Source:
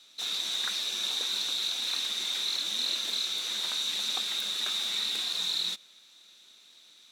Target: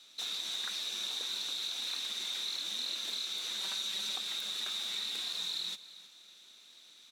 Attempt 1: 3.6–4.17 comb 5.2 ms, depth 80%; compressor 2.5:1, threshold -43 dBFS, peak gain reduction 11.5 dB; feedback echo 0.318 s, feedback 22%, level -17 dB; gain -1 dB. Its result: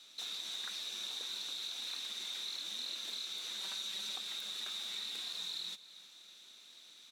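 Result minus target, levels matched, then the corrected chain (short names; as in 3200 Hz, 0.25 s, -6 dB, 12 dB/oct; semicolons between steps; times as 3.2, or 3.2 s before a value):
compressor: peak gain reduction +4.5 dB
3.6–4.17 comb 5.2 ms, depth 80%; compressor 2.5:1, threshold -35.5 dBFS, peak gain reduction 7 dB; feedback echo 0.318 s, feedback 22%, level -17 dB; gain -1 dB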